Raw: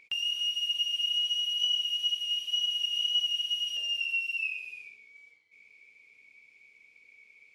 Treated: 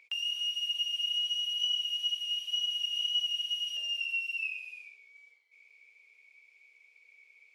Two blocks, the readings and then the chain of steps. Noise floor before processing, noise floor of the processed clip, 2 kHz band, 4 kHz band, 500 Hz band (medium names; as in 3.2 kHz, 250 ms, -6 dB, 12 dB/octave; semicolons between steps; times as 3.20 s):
-62 dBFS, -64 dBFS, -2.5 dB, -2.5 dB, no reading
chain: high-pass 460 Hz 24 dB/octave; trim -2.5 dB